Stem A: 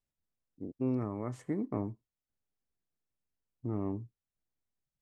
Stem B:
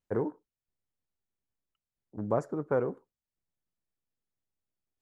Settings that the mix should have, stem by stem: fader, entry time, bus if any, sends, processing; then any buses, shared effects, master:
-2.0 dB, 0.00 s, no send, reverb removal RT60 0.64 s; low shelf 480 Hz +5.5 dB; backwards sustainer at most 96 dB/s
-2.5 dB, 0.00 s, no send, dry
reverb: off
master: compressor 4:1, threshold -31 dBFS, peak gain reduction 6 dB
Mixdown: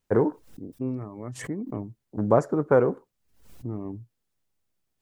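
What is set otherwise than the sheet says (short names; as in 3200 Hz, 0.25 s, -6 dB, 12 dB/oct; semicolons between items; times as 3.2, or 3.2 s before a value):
stem B -2.5 dB -> +9.0 dB; master: missing compressor 4:1, threshold -31 dBFS, peak gain reduction 6 dB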